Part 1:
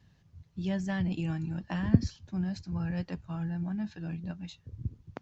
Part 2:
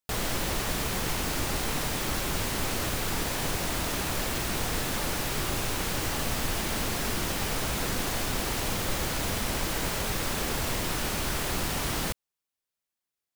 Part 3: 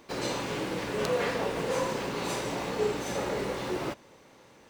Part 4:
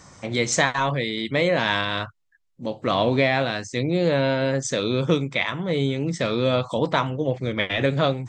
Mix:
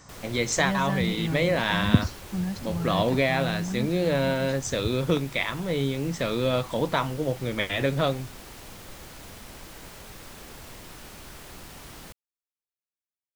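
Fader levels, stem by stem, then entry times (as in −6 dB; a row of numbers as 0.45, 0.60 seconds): +3.0, −14.0, −18.0, −3.5 decibels; 0.00, 0.00, 0.00, 0.00 seconds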